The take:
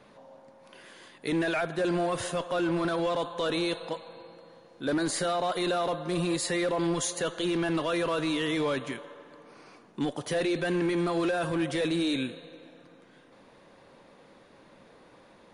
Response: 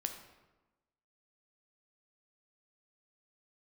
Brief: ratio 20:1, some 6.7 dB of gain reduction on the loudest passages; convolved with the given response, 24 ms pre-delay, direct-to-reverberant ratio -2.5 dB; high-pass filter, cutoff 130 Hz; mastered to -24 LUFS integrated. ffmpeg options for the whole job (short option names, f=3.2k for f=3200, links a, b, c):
-filter_complex "[0:a]highpass=130,acompressor=threshold=-31dB:ratio=20,asplit=2[a][b];[1:a]atrim=start_sample=2205,adelay=24[c];[b][c]afir=irnorm=-1:irlink=0,volume=2.5dB[d];[a][d]amix=inputs=2:normalize=0,volume=6.5dB"